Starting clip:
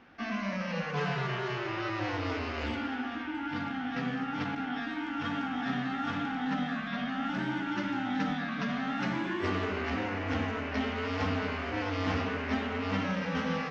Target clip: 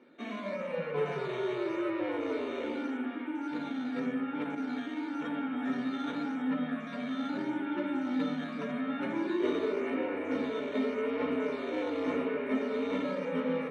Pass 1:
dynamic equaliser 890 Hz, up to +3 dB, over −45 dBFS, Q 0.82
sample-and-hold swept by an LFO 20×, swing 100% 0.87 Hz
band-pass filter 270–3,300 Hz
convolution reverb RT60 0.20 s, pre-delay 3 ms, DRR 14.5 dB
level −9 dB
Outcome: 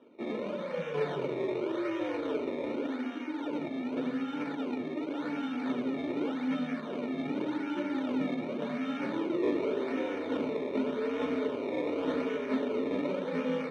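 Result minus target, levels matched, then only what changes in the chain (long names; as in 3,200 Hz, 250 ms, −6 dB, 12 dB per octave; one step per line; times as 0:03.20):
sample-and-hold swept by an LFO: distortion +10 dB
change: sample-and-hold swept by an LFO 6×, swing 100% 0.87 Hz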